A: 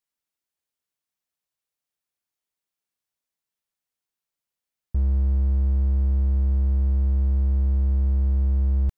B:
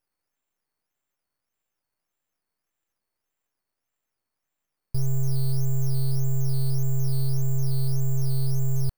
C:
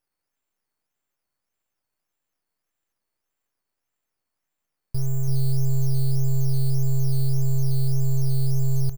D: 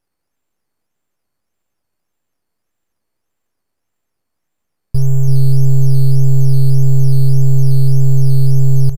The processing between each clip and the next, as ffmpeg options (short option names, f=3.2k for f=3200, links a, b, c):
-af "acrusher=samples=8:mix=1:aa=0.000001:lfo=1:lforange=4.8:lforate=1.7,aemphasis=mode=production:type=50kf,aeval=exprs='abs(val(0))':c=same"
-af "aecho=1:1:335:0.335"
-af "tiltshelf=f=640:g=4,acontrast=28,aresample=32000,aresample=44100,volume=4dB"